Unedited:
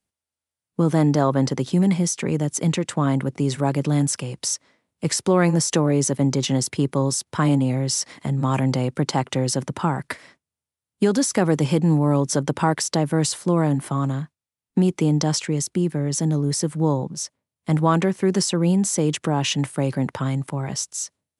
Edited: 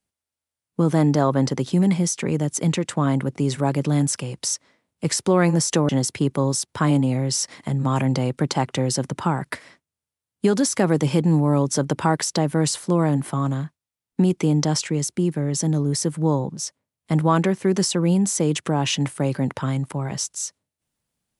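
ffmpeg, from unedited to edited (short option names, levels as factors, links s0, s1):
-filter_complex "[0:a]asplit=2[s0][s1];[s0]atrim=end=5.892[s2];[s1]atrim=start=6.468[s3];[s2][s3]acrossfade=d=0.004:c1=hsin:c2=hsin"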